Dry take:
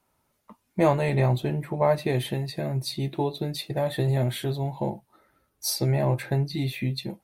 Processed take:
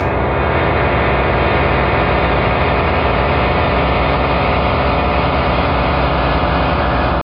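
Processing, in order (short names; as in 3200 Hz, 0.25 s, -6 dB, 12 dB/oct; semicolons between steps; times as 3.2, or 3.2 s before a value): tape start at the beginning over 2.08 s; pitch shift +2 st; downsampling 11025 Hz; Paulstretch 36×, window 0.50 s, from 0.41; AGC gain up to 8 dB; limiter -11 dBFS, peak gain reduction 5.5 dB; bell 62 Hz +13.5 dB 0.62 oct; reverb RT60 0.40 s, pre-delay 3 ms, DRR -4.5 dB; spectral compressor 4:1; gain -11.5 dB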